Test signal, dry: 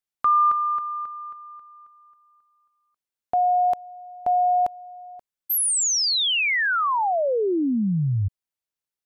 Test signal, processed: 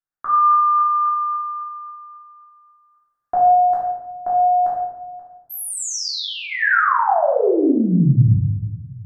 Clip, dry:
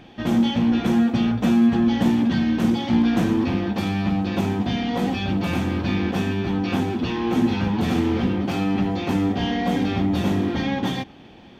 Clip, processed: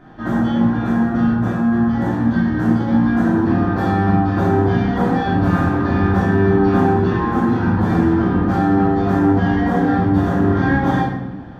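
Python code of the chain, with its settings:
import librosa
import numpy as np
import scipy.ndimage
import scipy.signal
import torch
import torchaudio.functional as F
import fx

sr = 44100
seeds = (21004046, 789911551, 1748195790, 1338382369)

y = fx.high_shelf_res(x, sr, hz=2000.0, db=-8.5, q=3.0)
y = fx.rider(y, sr, range_db=4, speed_s=0.5)
y = fx.room_shoebox(y, sr, seeds[0], volume_m3=380.0, walls='mixed', distance_m=3.1)
y = y * librosa.db_to_amplitude(-4.5)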